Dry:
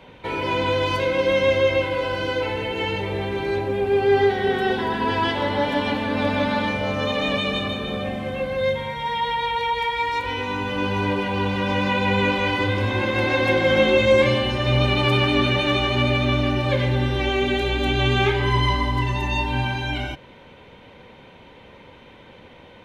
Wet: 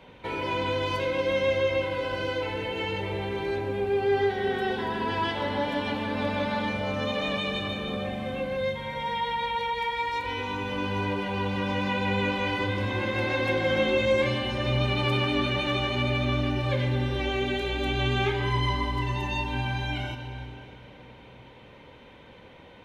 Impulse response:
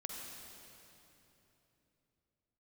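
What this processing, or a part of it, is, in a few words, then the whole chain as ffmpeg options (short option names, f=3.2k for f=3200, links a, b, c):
ducked reverb: -filter_complex "[0:a]asplit=3[a][b][c];[1:a]atrim=start_sample=2205[d];[b][d]afir=irnorm=-1:irlink=0[e];[c]apad=whole_len=1007458[f];[e][f]sidechaincompress=threshold=-24dB:ratio=8:attack=16:release=483,volume=-1.5dB[g];[a][g]amix=inputs=2:normalize=0,volume=-8dB"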